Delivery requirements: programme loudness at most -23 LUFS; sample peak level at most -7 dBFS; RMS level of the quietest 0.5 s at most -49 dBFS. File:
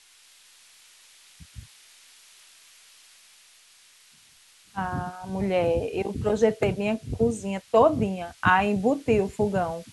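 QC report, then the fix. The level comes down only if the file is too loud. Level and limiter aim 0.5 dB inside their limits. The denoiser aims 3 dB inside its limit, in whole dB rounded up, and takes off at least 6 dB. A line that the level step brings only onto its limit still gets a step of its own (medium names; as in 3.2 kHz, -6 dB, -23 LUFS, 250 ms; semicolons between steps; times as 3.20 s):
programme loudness -25.0 LUFS: pass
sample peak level -6.5 dBFS: fail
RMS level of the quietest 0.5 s -56 dBFS: pass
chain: peak limiter -7.5 dBFS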